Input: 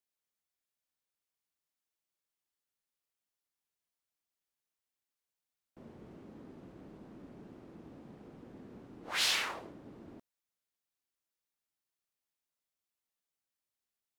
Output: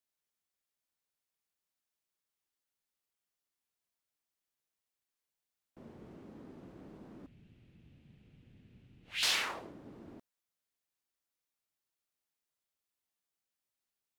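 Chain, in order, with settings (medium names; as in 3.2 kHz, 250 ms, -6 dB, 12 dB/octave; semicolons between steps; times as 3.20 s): 7.26–9.23 s: FFT filter 120 Hz 0 dB, 310 Hz -17 dB, 1.1 kHz -22 dB, 2.7 kHz +1 dB, 5.3 kHz -10 dB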